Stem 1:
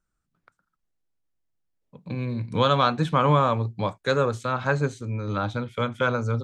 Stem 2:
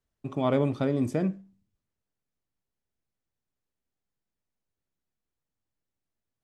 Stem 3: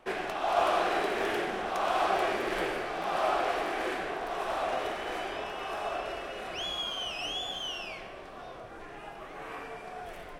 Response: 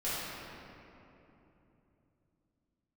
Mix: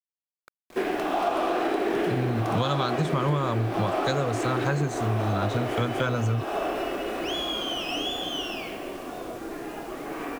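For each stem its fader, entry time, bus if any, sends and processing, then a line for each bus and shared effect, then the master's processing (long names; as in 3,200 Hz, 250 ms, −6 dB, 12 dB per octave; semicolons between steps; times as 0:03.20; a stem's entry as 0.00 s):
+1.5 dB, 0.00 s, no send, bass and treble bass +7 dB, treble +10 dB
muted
+2.0 dB, 0.70 s, send −12 dB, parametric band 300 Hz +13 dB 1 octave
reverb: on, RT60 3.2 s, pre-delay 4 ms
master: bit-depth reduction 8 bits, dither none; downward compressor 6 to 1, threshold −22 dBFS, peak gain reduction 12.5 dB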